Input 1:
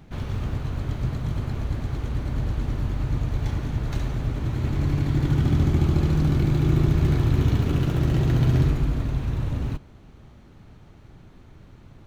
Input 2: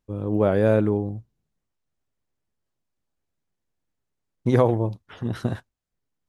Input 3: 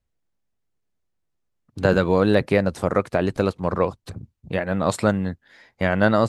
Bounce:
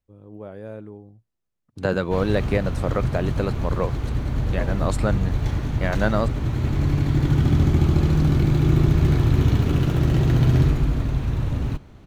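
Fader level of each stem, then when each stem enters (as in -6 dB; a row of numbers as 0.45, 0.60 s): +2.5, -17.5, -4.5 dB; 2.00, 0.00, 0.00 s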